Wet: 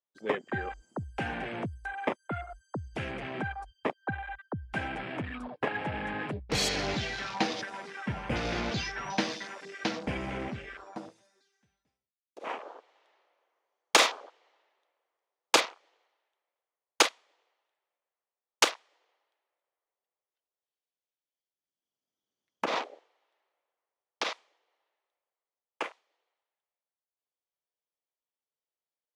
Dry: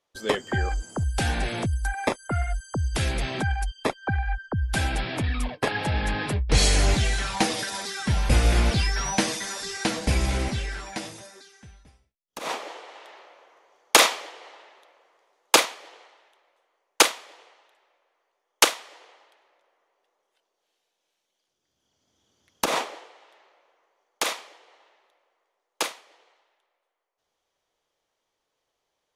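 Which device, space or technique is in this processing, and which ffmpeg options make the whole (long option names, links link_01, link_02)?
over-cleaned archive recording: -af "highpass=150,lowpass=7600,afwtdn=0.02,volume=-5dB"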